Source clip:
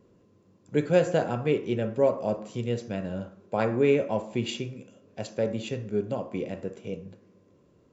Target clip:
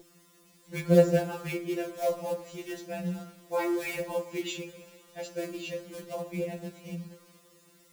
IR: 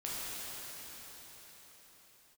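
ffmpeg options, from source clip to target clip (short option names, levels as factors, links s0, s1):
-filter_complex "[0:a]aeval=exprs='val(0)+0.02*sin(2*PI*400*n/s)':c=same,acrusher=bits=5:mode=log:mix=0:aa=0.000001,asplit=2[s0][s1];[1:a]atrim=start_sample=2205,highshelf=f=2100:g=7.5[s2];[s1][s2]afir=irnorm=-1:irlink=0,volume=0.0422[s3];[s0][s3]amix=inputs=2:normalize=0,afftfilt=real='re*2.83*eq(mod(b,8),0)':imag='im*2.83*eq(mod(b,8),0)':win_size=2048:overlap=0.75"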